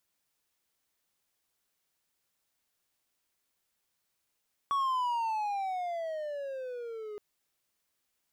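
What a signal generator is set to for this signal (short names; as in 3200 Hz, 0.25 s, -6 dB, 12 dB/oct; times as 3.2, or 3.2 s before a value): gliding synth tone triangle, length 2.47 s, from 1130 Hz, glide -17.5 st, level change -12.5 dB, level -24 dB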